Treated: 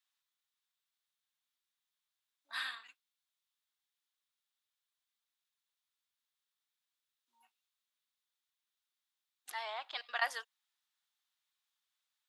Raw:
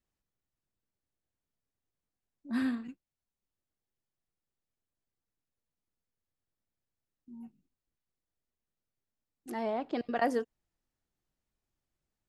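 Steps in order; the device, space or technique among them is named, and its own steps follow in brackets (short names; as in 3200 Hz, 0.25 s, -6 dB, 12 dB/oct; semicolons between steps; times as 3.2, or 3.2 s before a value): headphones lying on a table (HPF 1000 Hz 24 dB/oct; bell 3600 Hz +10 dB 0.47 oct); gain +2.5 dB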